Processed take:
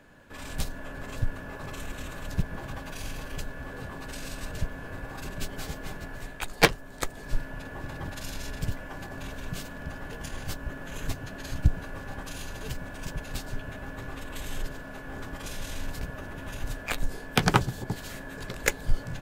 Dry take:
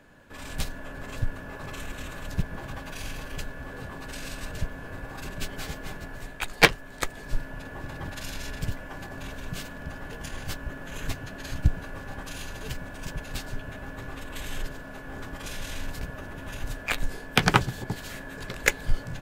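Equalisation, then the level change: dynamic EQ 2300 Hz, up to -5 dB, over -43 dBFS, Q 0.77; 0.0 dB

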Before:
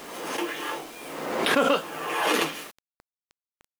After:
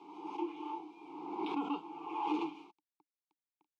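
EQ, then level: vowel filter u; BPF 150–5400 Hz; fixed phaser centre 380 Hz, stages 8; +3.0 dB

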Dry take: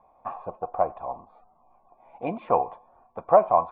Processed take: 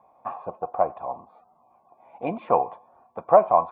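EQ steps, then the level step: HPF 100 Hz 12 dB/oct; +1.5 dB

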